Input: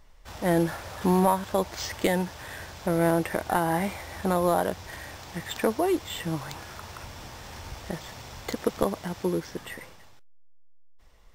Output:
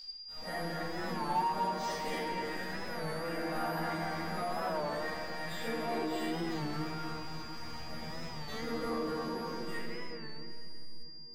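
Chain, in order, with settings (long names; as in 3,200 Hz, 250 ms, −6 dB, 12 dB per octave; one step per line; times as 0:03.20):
downward compressor 1.5 to 1, threshold −47 dBFS, peak gain reduction 10.5 dB
dynamic equaliser 1,600 Hz, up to +6 dB, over −53 dBFS, Q 1.7
feedback echo with a low-pass in the loop 244 ms, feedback 28%, low-pass 2,100 Hz, level −5 dB
noise gate −43 dBFS, range −22 dB
resonators tuned to a chord D#3 fifth, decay 0.3 s
steady tone 4,800 Hz −45 dBFS
convolution reverb RT60 3.0 s, pre-delay 4 ms, DRR −13.5 dB
in parallel at −4.5 dB: hard clipping −36 dBFS, distortion −8 dB
on the sum: wow of a warped record 33 1/3 rpm, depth 100 cents
level −3 dB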